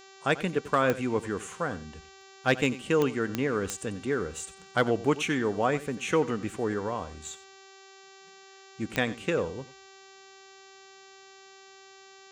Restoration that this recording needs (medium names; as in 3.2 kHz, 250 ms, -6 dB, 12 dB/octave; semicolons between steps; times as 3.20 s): de-click; de-hum 387.3 Hz, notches 19; inverse comb 91 ms -16.5 dB